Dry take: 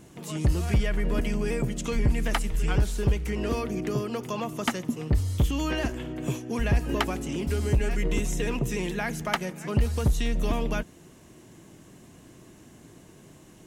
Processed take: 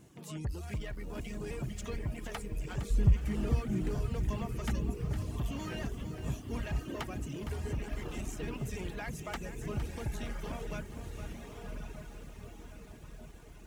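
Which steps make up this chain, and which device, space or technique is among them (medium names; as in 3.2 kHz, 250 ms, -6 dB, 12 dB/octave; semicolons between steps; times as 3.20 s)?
open-reel tape (saturation -24 dBFS, distortion -10 dB; peaking EQ 110 Hz +4 dB 1.19 oct; white noise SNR 44 dB); 2.90–3.95 s: tone controls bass +14 dB, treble -1 dB; echo that smears into a reverb 1136 ms, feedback 51%, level -4.5 dB; reverb removal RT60 1.2 s; bit-crushed delay 461 ms, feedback 35%, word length 8-bit, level -10 dB; trim -8.5 dB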